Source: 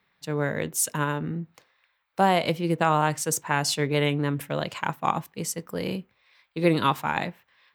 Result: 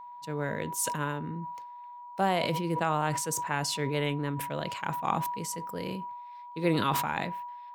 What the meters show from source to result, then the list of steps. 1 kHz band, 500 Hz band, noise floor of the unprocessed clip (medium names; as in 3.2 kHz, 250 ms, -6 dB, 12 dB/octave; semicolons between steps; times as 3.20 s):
-3.5 dB, -5.5 dB, -71 dBFS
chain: whistle 970 Hz -36 dBFS; decay stretcher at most 34 dB/s; trim -6.5 dB